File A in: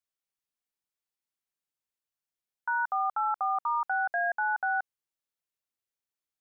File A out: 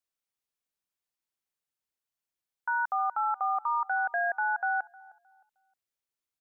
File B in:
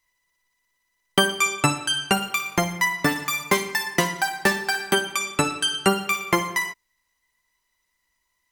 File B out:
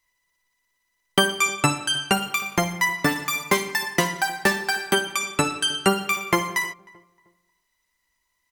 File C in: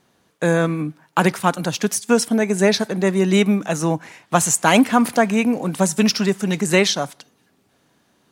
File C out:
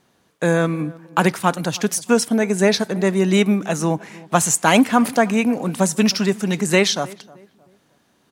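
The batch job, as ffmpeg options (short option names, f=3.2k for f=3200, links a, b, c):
-filter_complex "[0:a]asplit=2[a][b];[b]adelay=310,lowpass=f=1.3k:p=1,volume=-21dB,asplit=2[c][d];[d]adelay=310,lowpass=f=1.3k:p=1,volume=0.36,asplit=2[e][f];[f]adelay=310,lowpass=f=1.3k:p=1,volume=0.36[g];[a][c][e][g]amix=inputs=4:normalize=0"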